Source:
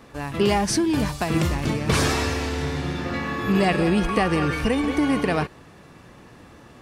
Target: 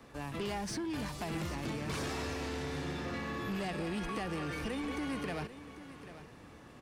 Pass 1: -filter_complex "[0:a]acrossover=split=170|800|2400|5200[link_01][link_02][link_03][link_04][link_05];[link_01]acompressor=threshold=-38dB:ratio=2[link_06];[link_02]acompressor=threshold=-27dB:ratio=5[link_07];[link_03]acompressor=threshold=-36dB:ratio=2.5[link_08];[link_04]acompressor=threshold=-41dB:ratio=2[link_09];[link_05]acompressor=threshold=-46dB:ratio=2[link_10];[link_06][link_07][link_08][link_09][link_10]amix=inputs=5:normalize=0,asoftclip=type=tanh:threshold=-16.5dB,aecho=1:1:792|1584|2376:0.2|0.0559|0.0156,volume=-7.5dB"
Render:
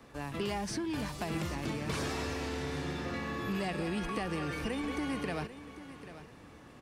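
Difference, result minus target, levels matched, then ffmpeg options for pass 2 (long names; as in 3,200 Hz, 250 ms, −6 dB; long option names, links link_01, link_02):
soft clipping: distortion −10 dB
-filter_complex "[0:a]acrossover=split=170|800|2400|5200[link_01][link_02][link_03][link_04][link_05];[link_01]acompressor=threshold=-38dB:ratio=2[link_06];[link_02]acompressor=threshold=-27dB:ratio=5[link_07];[link_03]acompressor=threshold=-36dB:ratio=2.5[link_08];[link_04]acompressor=threshold=-41dB:ratio=2[link_09];[link_05]acompressor=threshold=-46dB:ratio=2[link_10];[link_06][link_07][link_08][link_09][link_10]amix=inputs=5:normalize=0,asoftclip=type=tanh:threshold=-24dB,aecho=1:1:792|1584|2376:0.2|0.0559|0.0156,volume=-7.5dB"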